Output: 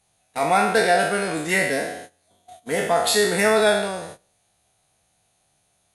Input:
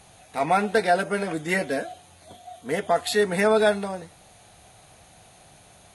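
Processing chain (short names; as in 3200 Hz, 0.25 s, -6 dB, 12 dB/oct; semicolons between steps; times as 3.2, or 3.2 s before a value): spectral trails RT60 0.86 s; gate -38 dBFS, range -20 dB; high shelf 3900 Hz +7 dB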